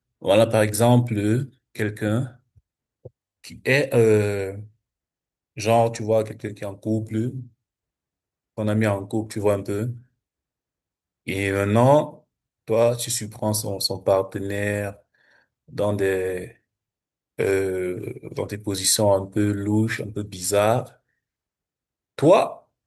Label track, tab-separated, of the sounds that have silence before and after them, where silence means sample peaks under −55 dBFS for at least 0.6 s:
5.560000	7.530000	sound
8.570000	10.060000	sound
11.260000	16.570000	sound
17.380000	20.970000	sound